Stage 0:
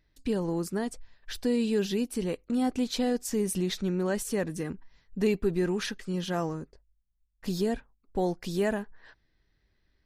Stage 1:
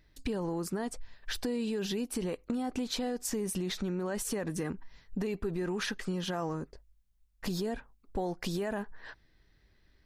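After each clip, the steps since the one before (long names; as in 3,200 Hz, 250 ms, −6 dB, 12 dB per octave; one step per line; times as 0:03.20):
brickwall limiter −24 dBFS, peak gain reduction 9.5 dB
downward compressor 4 to 1, threshold −38 dBFS, peak gain reduction 9.5 dB
dynamic equaliser 1,000 Hz, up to +5 dB, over −56 dBFS, Q 0.79
level +5.5 dB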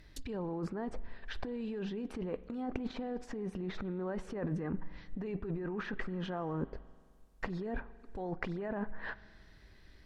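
compressor whose output falls as the input rises −39 dBFS, ratio −1
treble cut that deepens with the level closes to 1,600 Hz, closed at −36 dBFS
spring reverb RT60 2 s, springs 43 ms, chirp 20 ms, DRR 17.5 dB
level +2.5 dB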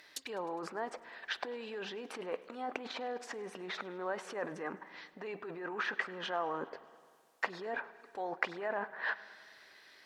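high-pass filter 670 Hz 12 dB per octave
feedback echo with a swinging delay time 103 ms, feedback 69%, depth 83 cents, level −22 dB
level +7.5 dB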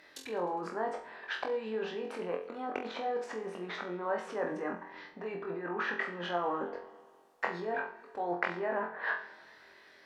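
high-shelf EQ 2,200 Hz −11 dB
on a send: flutter between parallel walls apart 3.9 metres, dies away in 0.36 s
on the sum: level +3.5 dB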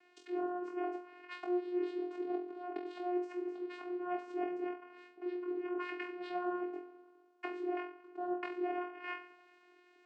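channel vocoder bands 8, saw 357 Hz
level −2 dB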